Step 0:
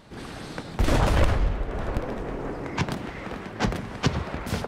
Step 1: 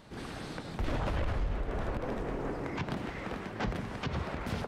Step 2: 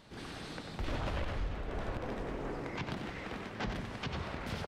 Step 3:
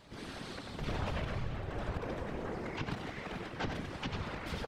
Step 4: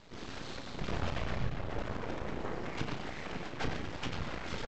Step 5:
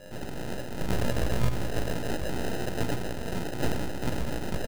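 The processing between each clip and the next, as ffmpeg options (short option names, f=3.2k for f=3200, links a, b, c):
-filter_complex "[0:a]acrossover=split=4300[a][b];[b]acompressor=threshold=-49dB:ratio=4:attack=1:release=60[c];[a][c]amix=inputs=2:normalize=0,alimiter=limit=-21dB:level=0:latency=1:release=73,volume=-3.5dB"
-filter_complex "[0:a]equalizer=f=3.8k:w=0.66:g=4.5,asplit=2[a][b];[b]aecho=0:1:93:0.398[c];[a][c]amix=inputs=2:normalize=0,volume=-4.5dB"
-af "afftfilt=real='hypot(re,im)*cos(2*PI*random(0))':imag='hypot(re,im)*sin(2*PI*random(1))':win_size=512:overlap=0.75,volume=6dB"
-filter_complex "[0:a]aresample=16000,aeval=exprs='max(val(0),0)':c=same,aresample=44100,asplit=2[a][b];[b]adelay=33,volume=-8.5dB[c];[a][c]amix=inputs=2:normalize=0,volume=4dB"
-filter_complex "[0:a]aeval=exprs='val(0)+0.00158*sin(2*PI*520*n/s)':c=same,asplit=2[a][b];[b]adelay=17,volume=-2dB[c];[a][c]amix=inputs=2:normalize=0,acrusher=samples=39:mix=1:aa=0.000001,volume=5.5dB"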